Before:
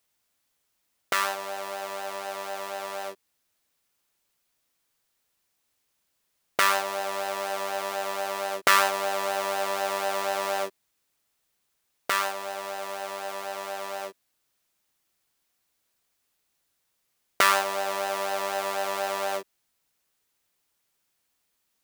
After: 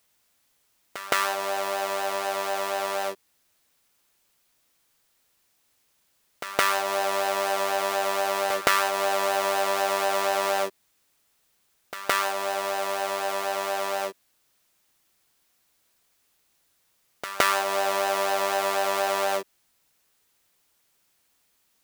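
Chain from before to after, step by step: compression 2.5:1, threshold -28 dBFS, peak gain reduction 10 dB; reverse echo 166 ms -13.5 dB; trim +6.5 dB

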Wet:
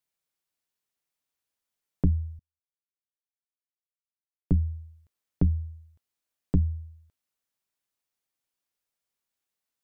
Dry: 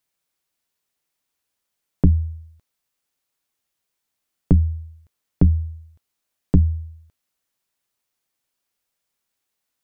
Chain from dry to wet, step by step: 2.39–4.52 s: upward expansion 2.5:1, over -40 dBFS; trim -8 dB

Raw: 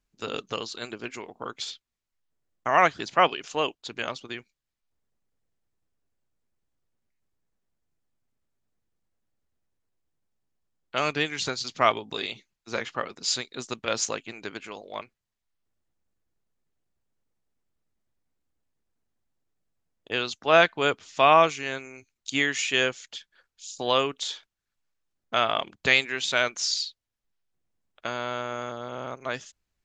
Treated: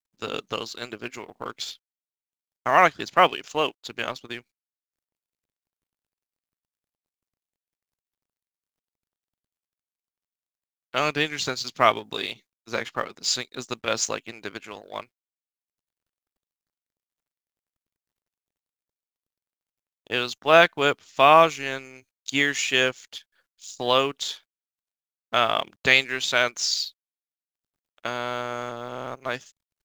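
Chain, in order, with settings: companding laws mixed up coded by A; trim +3 dB

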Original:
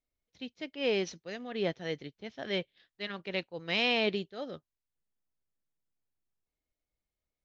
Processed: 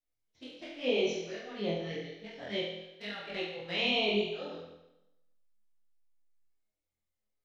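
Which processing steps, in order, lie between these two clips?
touch-sensitive flanger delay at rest 9.5 ms, full sweep at -29.5 dBFS; flutter echo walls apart 4.1 m, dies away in 0.94 s; detune thickener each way 31 cents

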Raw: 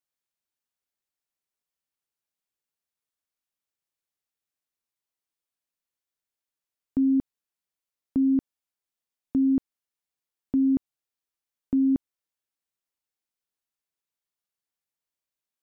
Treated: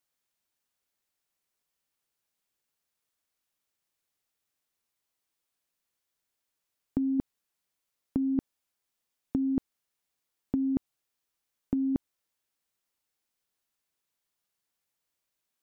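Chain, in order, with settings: compressor with a negative ratio -25 dBFS, ratio -0.5

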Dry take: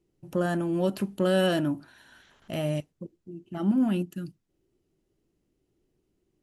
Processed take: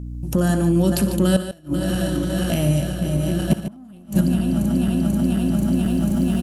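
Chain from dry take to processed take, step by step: backward echo that repeats 244 ms, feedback 80%, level -13 dB; recorder AGC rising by 19 dB/s; tone controls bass +10 dB, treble +13 dB; de-hum 110.5 Hz, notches 5; transient shaper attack 0 dB, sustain +5 dB; 3.50–4.21 s: waveshaping leveller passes 2; hum 60 Hz, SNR 13 dB; inverted gate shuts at -10 dBFS, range -31 dB; multi-tap echo 59/69/118/147 ms -18/-17.5/-18.5/-11 dB; trim +2.5 dB

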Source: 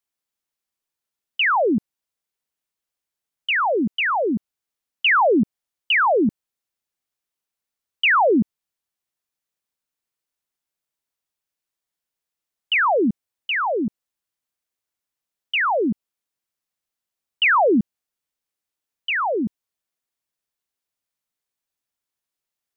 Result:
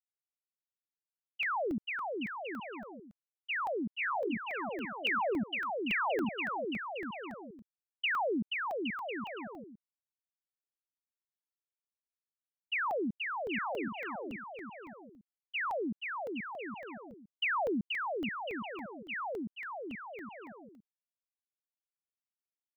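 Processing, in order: expander -12 dBFS; compression 4:1, threshold -33 dBFS, peak gain reduction 11.5 dB; bouncing-ball echo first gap 480 ms, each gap 0.7×, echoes 5; wow and flutter 24 cents; crackling interface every 0.28 s, samples 64, zero, from 0.31 s

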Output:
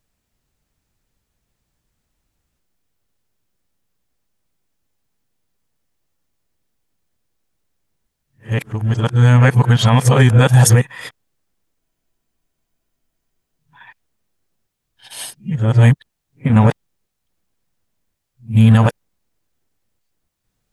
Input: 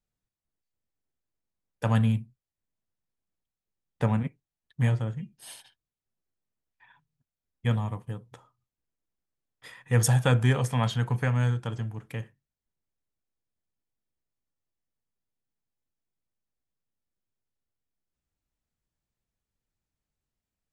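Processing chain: reverse the whole clip; spectral freeze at 11.82 s, 1.77 s; loudness maximiser +16.5 dB; trim -1 dB

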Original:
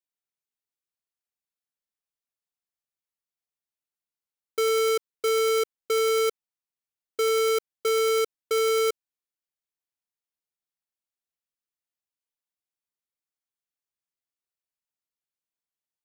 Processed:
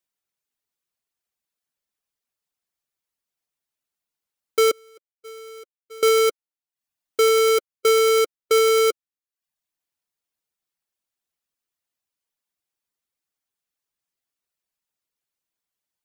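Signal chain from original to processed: 4.71–6.03 s: expander -11 dBFS; reverb removal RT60 0.57 s; trim +7.5 dB

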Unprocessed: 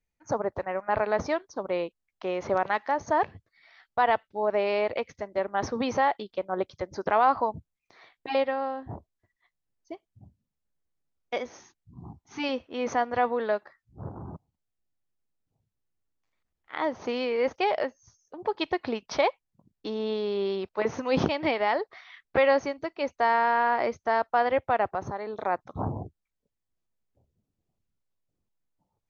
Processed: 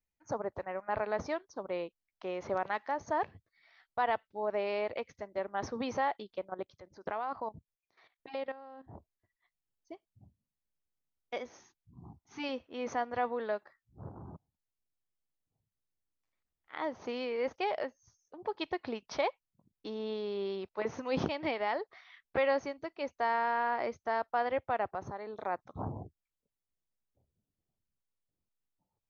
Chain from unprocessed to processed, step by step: 6.49–8.95 s: level held to a coarse grid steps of 14 dB; trim -7.5 dB

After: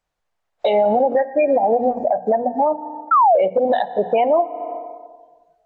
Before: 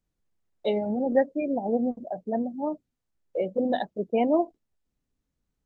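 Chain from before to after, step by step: low-pass 3 kHz 6 dB/octave; resonant low shelf 460 Hz -13 dB, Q 1.5; hum notches 60/120/180/240 Hz; FDN reverb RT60 1.5 s, low-frequency decay 0.85×, high-frequency decay 0.65×, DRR 19 dB; compression 6:1, threshold -38 dBFS, peak gain reduction 18 dB; painted sound fall, 3.11–3.40 s, 530–1400 Hz -35 dBFS; spectral noise reduction 16 dB; loudness maximiser +35.5 dB; trim -8 dB

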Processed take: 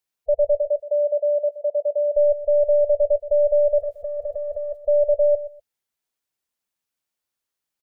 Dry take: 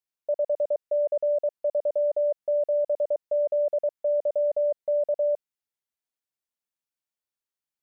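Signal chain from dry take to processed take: tracing distortion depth 0.093 ms; spectral gate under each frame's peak -15 dB strong; 0.56–2.15 s: high-pass 530 Hz -> 670 Hz 12 dB/octave; 3.80–4.77 s: compressor with a negative ratio -34 dBFS, ratio -1; feedback delay 123 ms, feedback 20%, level -14 dB; trim +7 dB

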